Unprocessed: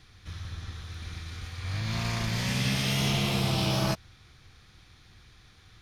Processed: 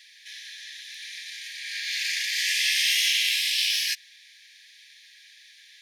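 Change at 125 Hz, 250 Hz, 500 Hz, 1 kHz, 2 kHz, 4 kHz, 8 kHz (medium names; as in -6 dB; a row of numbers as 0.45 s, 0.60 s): under -40 dB, under -40 dB, under -40 dB, under -40 dB, +8.5 dB, +9.0 dB, +9.0 dB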